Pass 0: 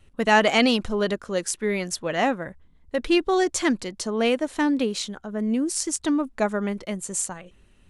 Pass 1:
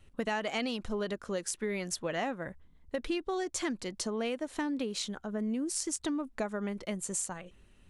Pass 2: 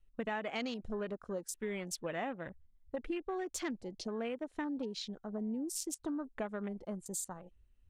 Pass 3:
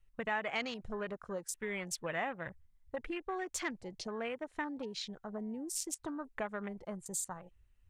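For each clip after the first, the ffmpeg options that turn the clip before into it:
ffmpeg -i in.wav -af "acompressor=threshold=-27dB:ratio=6,volume=-3.5dB" out.wav
ffmpeg -i in.wav -af "afwtdn=0.00708,volume=-4.5dB" out.wav
ffmpeg -i in.wav -af "equalizer=frequency=125:width_type=o:width=1:gain=6,equalizer=frequency=250:width_type=o:width=1:gain=-5,equalizer=frequency=1000:width_type=o:width=1:gain=4,equalizer=frequency=2000:width_type=o:width=1:gain=6,equalizer=frequency=8000:width_type=o:width=1:gain=3,volume=-1dB" out.wav

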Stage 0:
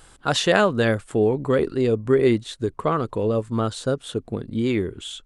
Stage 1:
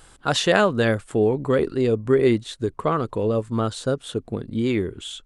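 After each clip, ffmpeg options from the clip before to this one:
ffmpeg -i in.wav -af anull out.wav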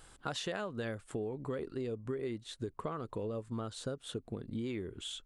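ffmpeg -i in.wav -af "acompressor=threshold=-28dB:ratio=6,volume=-7.5dB" out.wav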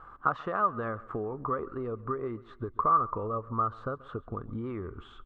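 ffmpeg -i in.wav -af "lowpass=frequency=1200:width_type=q:width=12,aecho=1:1:135|270|405|540:0.0891|0.0437|0.0214|0.0105,asubboost=boost=3:cutoff=94,volume=2.5dB" out.wav

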